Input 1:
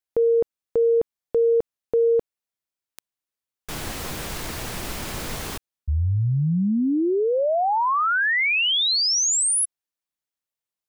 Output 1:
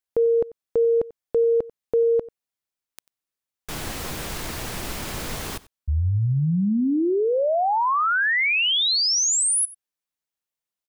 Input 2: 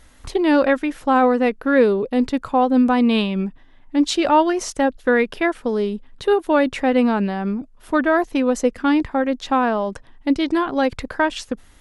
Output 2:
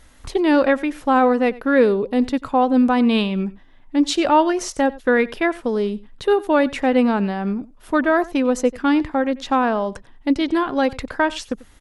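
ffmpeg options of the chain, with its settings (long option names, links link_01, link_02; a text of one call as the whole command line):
ffmpeg -i in.wav -af "aecho=1:1:92:0.0944" out.wav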